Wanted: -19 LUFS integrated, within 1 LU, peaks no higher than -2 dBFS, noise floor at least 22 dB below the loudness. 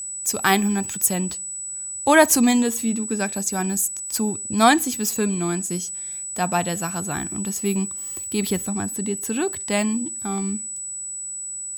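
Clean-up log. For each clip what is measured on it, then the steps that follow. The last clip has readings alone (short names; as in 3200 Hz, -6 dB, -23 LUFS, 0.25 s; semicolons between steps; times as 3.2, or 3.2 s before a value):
steady tone 7900 Hz; tone level -29 dBFS; loudness -22.5 LUFS; peak -3.0 dBFS; loudness target -19.0 LUFS
-> notch 7900 Hz, Q 30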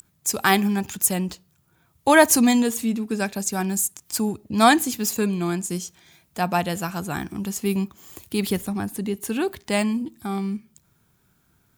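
steady tone none; loudness -23.0 LUFS; peak -3.0 dBFS; loudness target -19.0 LUFS
-> gain +4 dB; limiter -2 dBFS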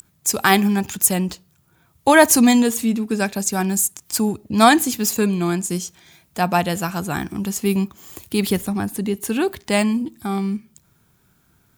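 loudness -19.0 LUFS; peak -2.0 dBFS; noise floor -61 dBFS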